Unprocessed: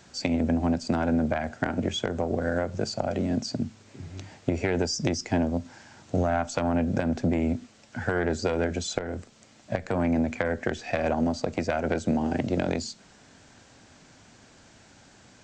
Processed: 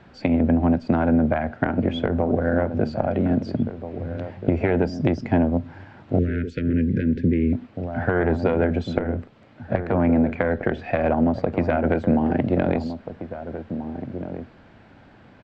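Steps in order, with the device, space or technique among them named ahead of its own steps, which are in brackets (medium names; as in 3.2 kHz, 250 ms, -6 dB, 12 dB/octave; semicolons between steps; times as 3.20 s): shout across a valley (distance through air 450 m; echo from a far wall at 280 m, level -10 dB); 6.19–7.53 s: Chebyshev band-stop 440–1700 Hz, order 3; trim +6.5 dB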